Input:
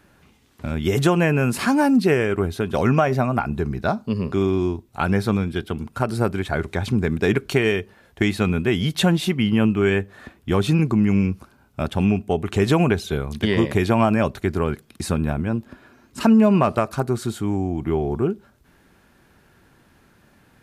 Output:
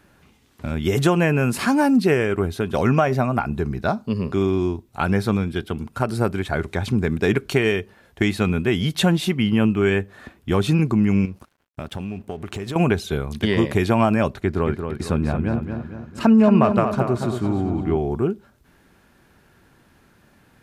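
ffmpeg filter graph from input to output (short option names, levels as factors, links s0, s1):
-filter_complex "[0:a]asettb=1/sr,asplit=3[s0][s1][s2];[s0]atrim=end=11.254[s3];[s1]atrim=start=11.25:end=12.76,asetpts=PTS-STARTPTS,afade=t=in:d=0.004:c=qsin,afade=t=out:st=1.506:d=0.004:c=qsin,acompressor=threshold=0.0501:ratio=5:attack=3.2:release=140:knee=1:detection=peak,aeval=exprs='sgn(val(0))*max(abs(val(0))-0.00251,0)':c=same[s4];[s2]atrim=start=12.756[s5];[s3][s4]acrossfade=d=0.004:c1=hsin:c2=qsin[s6];[s6][s5]acrossfade=d=0.004:c1=qsin:c2=hsin,asettb=1/sr,asplit=3[s7][s8][s9];[s7]atrim=end=14.344[s10];[s8]atrim=start=14.34:end=17.97,asetpts=PTS-STARTPTS,afade=t=in:d=0.004:c=qsin,afade=t=out:st=3.626:d=0.004:c=qsin,aemphasis=mode=reproduction:type=cd,asplit=2[s11][s12];[s12]adelay=228,lowpass=f=3700:p=1,volume=0.473,asplit=2[s13][s14];[s14]adelay=228,lowpass=f=3700:p=1,volume=0.49,asplit=2[s15][s16];[s16]adelay=228,lowpass=f=3700:p=1,volume=0.49,asplit=2[s17][s18];[s18]adelay=228,lowpass=f=3700:p=1,volume=0.49,asplit=2[s19][s20];[s20]adelay=228,lowpass=f=3700:p=1,volume=0.49,asplit=2[s21][s22];[s22]adelay=228,lowpass=f=3700:p=1,volume=0.49[s23];[s11][s13][s15][s17][s19][s21][s23]amix=inputs=7:normalize=0,atrim=end_sample=160083[s24];[s9]atrim=start=17.966[s25];[s10][s24]acrossfade=d=0.004:c1=hsin:c2=qsin[s26];[s26][s25]acrossfade=d=0.004:c1=qsin:c2=hsin"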